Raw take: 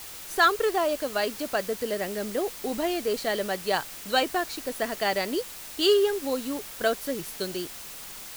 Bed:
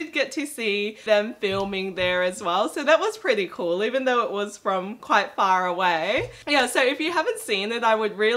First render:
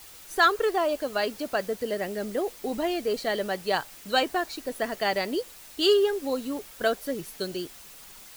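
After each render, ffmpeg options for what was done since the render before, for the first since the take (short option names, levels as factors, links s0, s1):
-af "afftdn=nr=7:nf=-41"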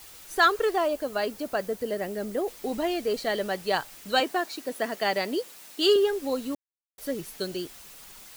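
-filter_complex "[0:a]asettb=1/sr,asplit=3[s0][s1][s2];[s0]atrim=end=0.884[s3];[s1]atrim=start=0.88:end=2.48,asetpts=PTS-STARTPTS,afade=t=in:d=0.004:c=qsin,afade=t=out:st=1.596:d=0.004:c=qsin,equalizer=f=3400:w=0.46:g=-4[s4];[s2]atrim=start=2.476[s5];[s3][s4]acrossfade=d=0.004:c1=hsin:c2=qsin[s6];[s6][s5]acrossfade=d=0.004:c1=qsin:c2=hsin,asettb=1/sr,asplit=3[s7][s8][s9];[s7]atrim=end=4.204[s10];[s8]atrim=start=4.2:end=5.96,asetpts=PTS-STARTPTS,afade=t=in:d=0.004:c=qsin,afade=t=out:st=1.756:d=0.004:c=qsin,highpass=f=150:w=0.5412,highpass=f=150:w=1.3066[s11];[s9]atrim=start=5.956[s12];[s10][s11]acrossfade=d=0.004:c1=hsin:c2=qsin[s13];[s13][s12]acrossfade=d=0.004:c1=qsin:c2=hsin,asplit=3[s14][s15][s16];[s14]atrim=end=6.55,asetpts=PTS-STARTPTS,afade=t=out:st=6.546:d=0.004:c=hsin[s17];[s15]atrim=start=6.55:end=6.98,asetpts=PTS-STARTPTS,volume=0[s18];[s16]atrim=start=6.98,asetpts=PTS-STARTPTS,afade=t=in:d=0.004:c=hsin[s19];[s17][s18][s19]concat=n=3:v=0:a=1"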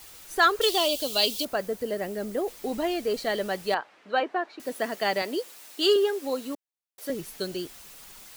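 -filter_complex "[0:a]asettb=1/sr,asplit=3[s0][s1][s2];[s0]atrim=end=0.614[s3];[s1]atrim=start=0.61:end=1.45,asetpts=PTS-STARTPTS,afade=t=in:d=0.004:c=qsin,afade=t=out:st=0.836:d=0.004:c=qsin,highshelf=f=2400:t=q:w=3:g=12[s4];[s2]atrim=start=1.446[s5];[s3][s4]acrossfade=d=0.004:c1=hsin:c2=qsin[s6];[s6][s5]acrossfade=d=0.004:c1=qsin:c2=hsin,asettb=1/sr,asplit=3[s7][s8][s9];[s7]atrim=end=3.744[s10];[s8]atrim=start=3.74:end=4.6,asetpts=PTS-STARTPTS,afade=t=in:d=0.004:c=qsin,afade=t=out:st=0.856:d=0.004:c=qsin,highpass=330,lowpass=2000[s11];[s9]atrim=start=4.596[s12];[s10][s11]acrossfade=d=0.004:c1=hsin:c2=qsin[s13];[s13][s12]acrossfade=d=0.004:c1=qsin:c2=hsin,asettb=1/sr,asplit=3[s14][s15][s16];[s14]atrim=end=5.224[s17];[s15]atrim=start=5.22:end=7.1,asetpts=PTS-STARTPTS,afade=t=in:d=0.004:c=qsin,afade=t=out:st=1.876:d=0.004:c=qsin,highpass=260[s18];[s16]atrim=start=7.096[s19];[s17][s18]acrossfade=d=0.004:c1=hsin:c2=qsin[s20];[s20][s19]acrossfade=d=0.004:c1=qsin:c2=hsin"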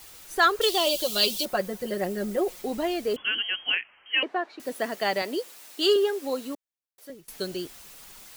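-filter_complex "[0:a]asettb=1/sr,asplit=3[s0][s1][s2];[s0]atrim=end=0.864[s3];[s1]atrim=start=0.86:end=2.62,asetpts=PTS-STARTPTS,afade=t=in:d=0.004:c=qsin,afade=t=out:st=1.756:d=0.004:c=qsin,aecho=1:1:5.5:0.83,atrim=end_sample=77616[s4];[s2]atrim=start=2.616[s5];[s3][s4]acrossfade=d=0.004:c1=hsin:c2=qsin[s6];[s6][s5]acrossfade=d=0.004:c1=qsin:c2=hsin,asettb=1/sr,asplit=3[s7][s8][s9];[s7]atrim=end=3.164[s10];[s8]atrim=start=3.16:end=4.23,asetpts=PTS-STARTPTS,afade=t=in:d=0.004:c=qsin,afade=t=out:st=1.066:d=0.004:c=qsin,lowpass=f=2900:t=q:w=0.5098,lowpass=f=2900:t=q:w=0.6013,lowpass=f=2900:t=q:w=0.9,lowpass=f=2900:t=q:w=2.563,afreqshift=-3400[s11];[s9]atrim=start=4.226[s12];[s10][s11]acrossfade=d=0.004:c1=hsin:c2=qsin[s13];[s13][s12]acrossfade=d=0.004:c1=qsin:c2=hsin,asplit=2[s14][s15];[s14]atrim=end=7.28,asetpts=PTS-STARTPTS,afade=t=out:st=6.45:d=0.83:silence=0.0749894[s16];[s15]atrim=start=7.28,asetpts=PTS-STARTPTS,afade=t=in:d=0.004:c=hsin:silence=0.0749894[s17];[s16][s17]concat=n=2:v=0:a=1"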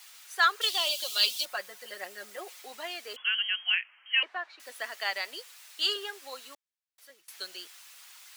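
-af "highpass=1300,highshelf=f=8300:g=-7.5"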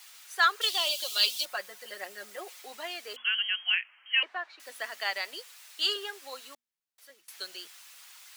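-af "bandreject=f=60:t=h:w=6,bandreject=f=120:t=h:w=6,bandreject=f=180:t=h:w=6,bandreject=f=240:t=h:w=6"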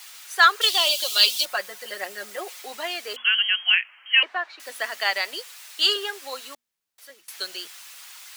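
-af "volume=2.51,alimiter=limit=0.708:level=0:latency=1"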